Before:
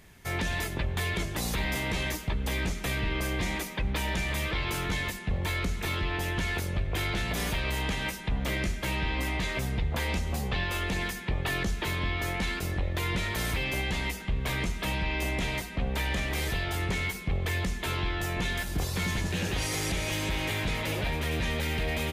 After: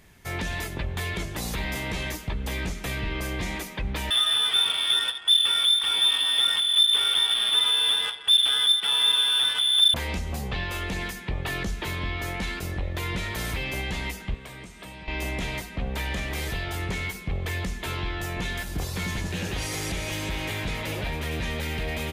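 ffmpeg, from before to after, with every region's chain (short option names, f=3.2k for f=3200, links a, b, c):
-filter_complex "[0:a]asettb=1/sr,asplit=3[a][b][c];[a]atrim=end=4.104[d];[b]atrim=start=4.1:end=9.94,asetpts=PTS-STARTPTS,afade=t=in:d=0.004:c=qsin,afade=t=out:st=5.836:d=0.004:c=qsin,lowshelf=f=260:g=10,lowpass=f=3.1k:t=q:w=0.5098,lowpass=f=3.1k:t=q:w=0.6013,lowpass=f=3.1k:t=q:w=0.9,lowpass=f=3.1k:t=q:w=2.563,afreqshift=-3600,adynamicsmooth=sensitivity=5:basefreq=2k[e];[c]atrim=start=9.936[f];[d][e]acrossfade=d=0.004:c1=hsin:c2=qsin[g];[g][f]acrossfade=d=0.004:c1=qsin:c2=hsin,asettb=1/sr,asplit=3[h][i][j];[h]atrim=end=14.344[k];[i]atrim=start=14.34:end=15.08,asetpts=PTS-STARTPTS,afade=t=in:d=0.004:c=qsin,afade=t=out:st=0.736:d=0.004:c=qsin,equalizer=f=8.4k:w=7:g=9.5,acrossover=split=200|1000[l][m][n];[l]acompressor=threshold=-44dB:ratio=4[o];[m]acompressor=threshold=-47dB:ratio=4[p];[n]acompressor=threshold=-46dB:ratio=4[q];[o][p][q]amix=inputs=3:normalize=0,highpass=f=81:p=1[r];[j]atrim=start=15.076[s];[k][r]acrossfade=d=0.004:c1=hsin:c2=qsin[t];[t][s]acrossfade=d=0.004:c1=qsin:c2=hsin"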